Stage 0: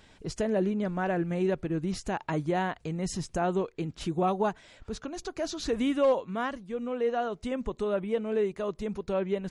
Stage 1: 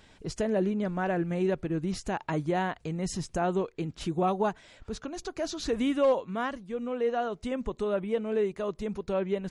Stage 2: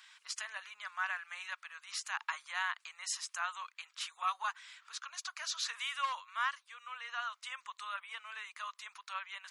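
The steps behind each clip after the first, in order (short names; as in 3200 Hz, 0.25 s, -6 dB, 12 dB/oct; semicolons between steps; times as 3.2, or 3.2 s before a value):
nothing audible
elliptic high-pass 1100 Hz, stop band 70 dB; gain +2.5 dB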